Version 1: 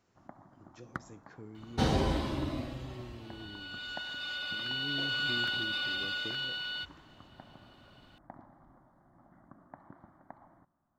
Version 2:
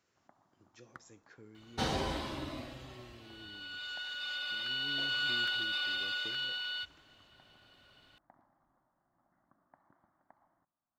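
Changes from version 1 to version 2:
first sound -10.0 dB; master: add low shelf 490 Hz -9.5 dB

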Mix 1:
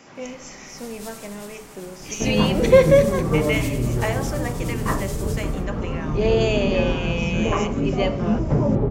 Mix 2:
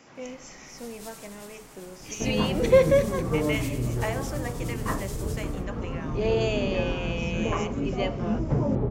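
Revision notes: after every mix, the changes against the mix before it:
reverb: off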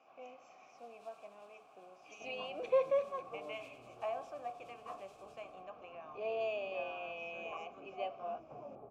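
second sound -8.0 dB; master: add vowel filter a

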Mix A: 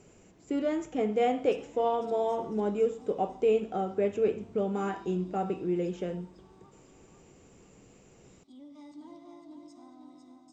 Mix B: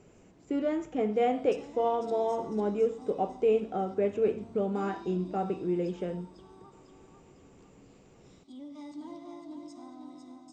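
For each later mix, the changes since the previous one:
speech: add high shelf 4300 Hz -9 dB; background +5.0 dB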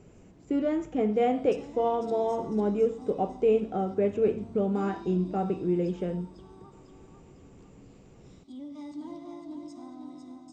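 master: add low shelf 240 Hz +8 dB

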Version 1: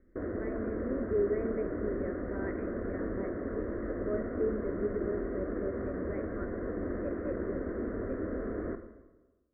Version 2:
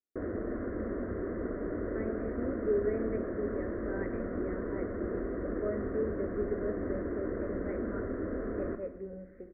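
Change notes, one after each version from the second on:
speech: entry +1.55 s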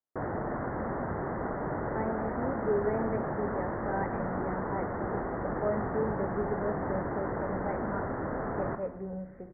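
background: add tilt shelf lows -4 dB, about 670 Hz; master: remove fixed phaser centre 350 Hz, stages 4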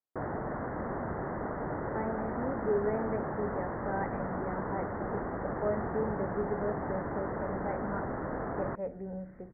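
reverb: off

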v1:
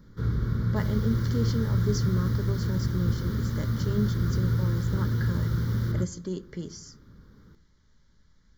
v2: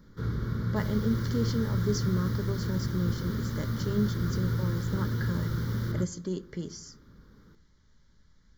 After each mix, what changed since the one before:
first sound: add low shelf 120 Hz -8 dB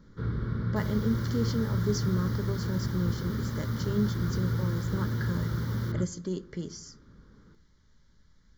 first sound: add running mean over 6 samples; second sound: add resonant high-pass 680 Hz, resonance Q 3.7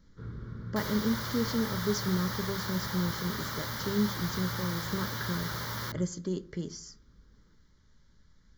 first sound -10.0 dB; second sound +10.0 dB

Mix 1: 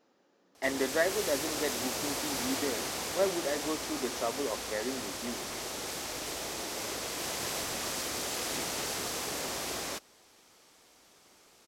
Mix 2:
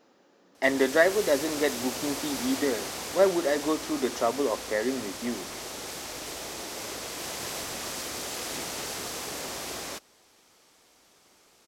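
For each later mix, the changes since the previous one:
speech +7.5 dB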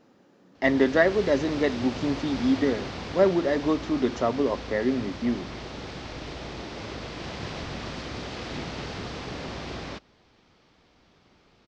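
background: add LPF 4900 Hz 24 dB/oct; master: add tone controls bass +13 dB, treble -4 dB

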